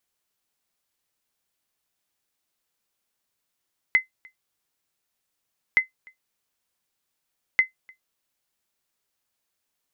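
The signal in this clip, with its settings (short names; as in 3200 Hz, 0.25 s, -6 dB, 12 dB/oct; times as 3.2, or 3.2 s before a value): sonar ping 2050 Hz, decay 0.13 s, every 1.82 s, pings 3, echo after 0.30 s, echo -29.5 dB -9 dBFS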